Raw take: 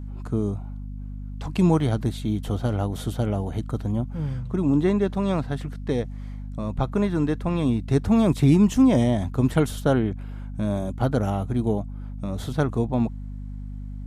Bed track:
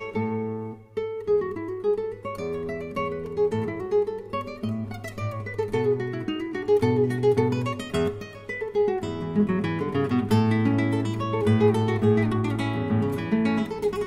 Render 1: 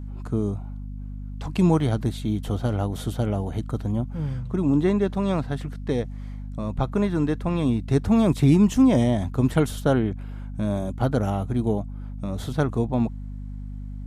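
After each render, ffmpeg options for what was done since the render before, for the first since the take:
ffmpeg -i in.wav -af anull out.wav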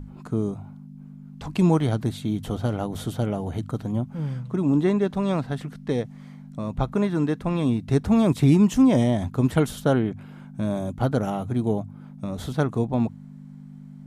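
ffmpeg -i in.wav -af "bandreject=frequency=50:width_type=h:width=6,bandreject=frequency=100:width_type=h:width=6" out.wav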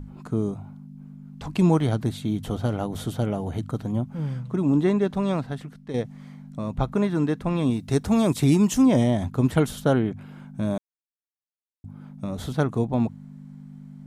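ffmpeg -i in.wav -filter_complex "[0:a]asettb=1/sr,asplit=3[link_01][link_02][link_03];[link_01]atrim=end=7.704[link_04];[link_02]atrim=start=7.7:end=8.86,asetpts=PTS-STARTPTS,afade=type=in:duration=0.004:curve=qsin,afade=type=out:start_time=1.156:duration=0.004:curve=qsin,bass=frequency=250:gain=-3,treble=frequency=4000:gain=7[link_05];[link_03]atrim=start=8.856[link_06];[link_04][link_05]acrossfade=duration=0.004:curve1=hsin:curve2=qsin[link_07];[link_07][link_06]acrossfade=duration=0.004:curve1=qsin:curve2=hsin,asplit=4[link_08][link_09][link_10][link_11];[link_08]atrim=end=5.94,asetpts=PTS-STARTPTS,afade=type=out:start_time=5.23:duration=0.71:silence=0.334965[link_12];[link_09]atrim=start=5.94:end=10.78,asetpts=PTS-STARTPTS,afade=type=in:duration=0.004:curve=hsin:silence=0.334965,afade=type=out:start_time=4.836:duration=0.004:curve=hsin[link_13];[link_10]atrim=start=10.78:end=11.84,asetpts=PTS-STARTPTS,volume=0[link_14];[link_11]atrim=start=11.84,asetpts=PTS-STARTPTS,afade=type=in:duration=0.004:curve=hsin[link_15];[link_12][link_13][link_14][link_15]concat=n=4:v=0:a=1" out.wav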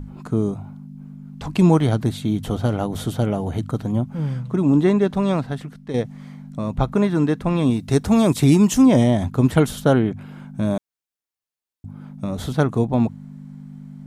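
ffmpeg -i in.wav -af "volume=4.5dB" out.wav

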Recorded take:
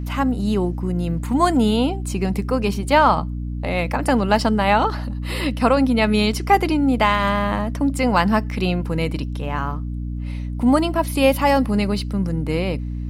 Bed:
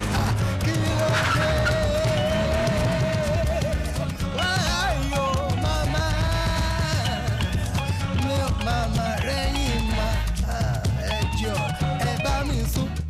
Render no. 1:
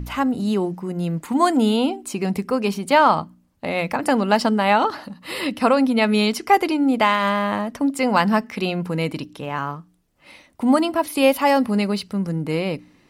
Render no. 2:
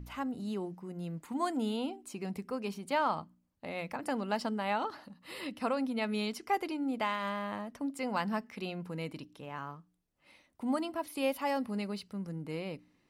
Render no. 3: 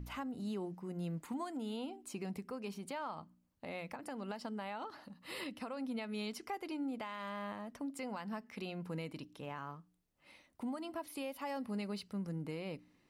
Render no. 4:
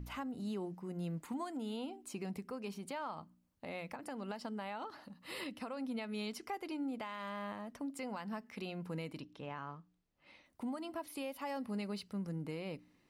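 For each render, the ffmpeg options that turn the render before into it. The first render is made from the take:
ffmpeg -i in.wav -af "bandreject=frequency=60:width_type=h:width=4,bandreject=frequency=120:width_type=h:width=4,bandreject=frequency=180:width_type=h:width=4,bandreject=frequency=240:width_type=h:width=4,bandreject=frequency=300:width_type=h:width=4" out.wav
ffmpeg -i in.wav -af "volume=-15.5dB" out.wav
ffmpeg -i in.wav -af "acompressor=threshold=-34dB:ratio=3,alimiter=level_in=8.5dB:limit=-24dB:level=0:latency=1:release=379,volume=-8.5dB" out.wav
ffmpeg -i in.wav -filter_complex "[0:a]asettb=1/sr,asplit=3[link_01][link_02][link_03];[link_01]atrim=end=9.214[link_04];[link_02]atrim=start=9.21:end=10.46,asetpts=PTS-STARTPTS,afade=type=in:duration=0.004:curve=qsin,afade=type=out:start_time=1.246:duration=0.004:curve=qsin,lowpass=5200[link_05];[link_03]atrim=start=10.456[link_06];[link_04][link_05]acrossfade=duration=0.004:curve1=hsin:curve2=qsin[link_07];[link_07][link_06]acrossfade=duration=0.004:curve1=qsin:curve2=hsin" out.wav

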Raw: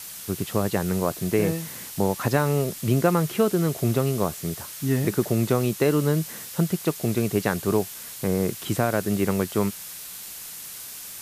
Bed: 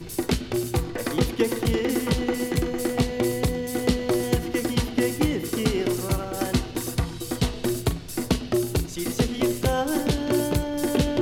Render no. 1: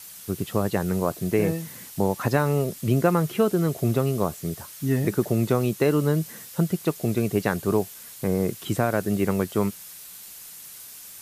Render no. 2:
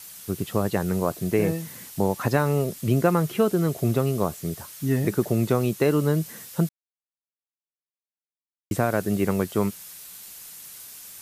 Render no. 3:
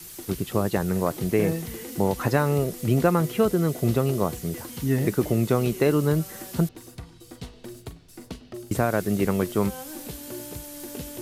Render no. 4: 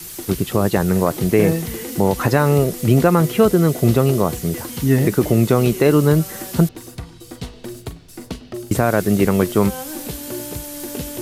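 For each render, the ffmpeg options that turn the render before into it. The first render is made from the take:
ffmpeg -i in.wav -af "afftdn=noise_reduction=6:noise_floor=-39" out.wav
ffmpeg -i in.wav -filter_complex "[0:a]asplit=3[link_01][link_02][link_03];[link_01]atrim=end=6.69,asetpts=PTS-STARTPTS,afade=type=out:start_time=6.686:duration=0.004:curve=hsin[link_04];[link_02]atrim=start=6.69:end=8.71,asetpts=PTS-STARTPTS,volume=0[link_05];[link_03]atrim=start=8.71,asetpts=PTS-STARTPTS,afade=type=in:duration=0.004:curve=hsin[link_06];[link_04][link_05][link_06]concat=n=3:v=0:a=1" out.wav
ffmpeg -i in.wav -i bed.wav -filter_complex "[1:a]volume=-15dB[link_01];[0:a][link_01]amix=inputs=2:normalize=0" out.wav
ffmpeg -i in.wav -af "volume=8dB,alimiter=limit=-3dB:level=0:latency=1" out.wav

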